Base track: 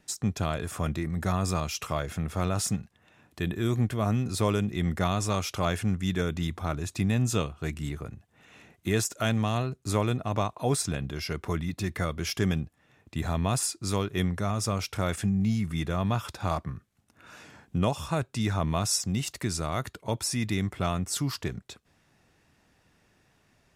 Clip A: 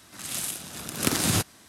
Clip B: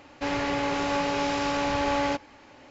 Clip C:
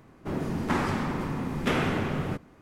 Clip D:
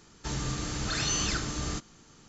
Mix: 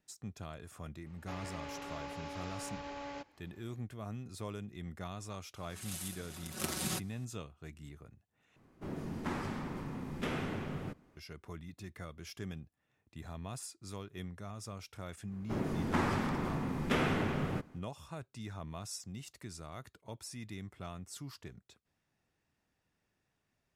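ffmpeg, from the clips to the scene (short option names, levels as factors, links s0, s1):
-filter_complex "[3:a]asplit=2[s0][s1];[0:a]volume=0.15[s2];[2:a]alimiter=limit=0.119:level=0:latency=1:release=71[s3];[1:a]aecho=1:1:5.4:0.71[s4];[s0]equalizer=f=1200:t=o:w=2.5:g=-2[s5];[s2]asplit=2[s6][s7];[s6]atrim=end=8.564[s8];[s5]atrim=end=2.61,asetpts=PTS-STARTPTS,volume=0.316[s9];[s7]atrim=start=11.166[s10];[s3]atrim=end=2.7,asetpts=PTS-STARTPTS,volume=0.15,afade=t=in:d=0.004:c=hsin,afade=t=out:st=2.696:d=0.004:c=hsin,adelay=1060[s11];[s4]atrim=end=1.68,asetpts=PTS-STARTPTS,volume=0.2,afade=t=in:d=0.004:c=hsin,afade=t=out:st=1.676:d=0.004:c=hsin,adelay=245637S[s12];[s1]atrim=end=2.61,asetpts=PTS-STARTPTS,volume=0.562,afade=t=in:d=0.1,afade=t=out:st=2.51:d=0.1,adelay=672084S[s13];[s8][s9]acrossfade=d=0.004:c1=hsin:c2=hsin[s14];[s14][s10]acrossfade=d=0.004:c1=hsin:c2=hsin[s15];[s15][s11][s12][s13]amix=inputs=4:normalize=0"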